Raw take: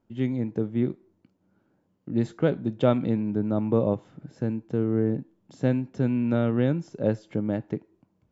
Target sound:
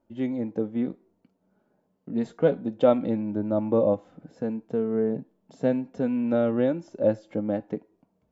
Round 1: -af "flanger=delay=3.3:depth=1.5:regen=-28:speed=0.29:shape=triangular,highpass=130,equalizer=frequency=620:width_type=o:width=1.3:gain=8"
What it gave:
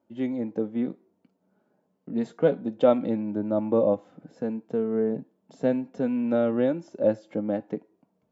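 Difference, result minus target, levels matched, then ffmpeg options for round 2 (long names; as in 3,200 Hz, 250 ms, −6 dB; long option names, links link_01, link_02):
125 Hz band −2.5 dB
-af "flanger=delay=3.3:depth=1.5:regen=-28:speed=0.29:shape=triangular,equalizer=frequency=620:width_type=o:width=1.3:gain=8"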